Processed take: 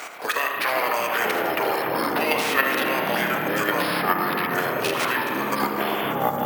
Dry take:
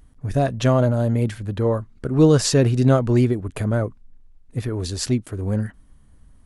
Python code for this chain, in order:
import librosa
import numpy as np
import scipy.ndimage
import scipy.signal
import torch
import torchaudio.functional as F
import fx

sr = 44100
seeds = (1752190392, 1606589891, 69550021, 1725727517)

p1 = fx.spec_clip(x, sr, under_db=28)
p2 = scipy.signal.sosfilt(scipy.signal.butter(2, 950.0, 'highpass', fs=sr, output='sos'), p1)
p3 = fx.peak_eq(p2, sr, hz=3100.0, db=7.5, octaves=1.2)
p4 = fx.level_steps(p3, sr, step_db=13)
p5 = fx.formant_shift(p4, sr, semitones=-6)
p6 = p5 + fx.echo_single(p5, sr, ms=79, db=-12.0, dry=0)
p7 = fx.rev_spring(p6, sr, rt60_s=1.8, pass_ms=(32,), chirp_ms=20, drr_db=2.5)
p8 = fx.echo_pitch(p7, sr, ms=218, semitones=-7, count=3, db_per_echo=-3.0)
p9 = np.repeat(scipy.signal.resample_poly(p8, 1, 3), 3)[:len(p8)]
y = fx.band_squash(p9, sr, depth_pct=70)